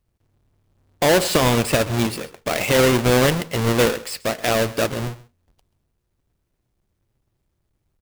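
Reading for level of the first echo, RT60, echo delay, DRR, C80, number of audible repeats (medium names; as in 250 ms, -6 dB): -19.0 dB, no reverb, 133 ms, no reverb, no reverb, 1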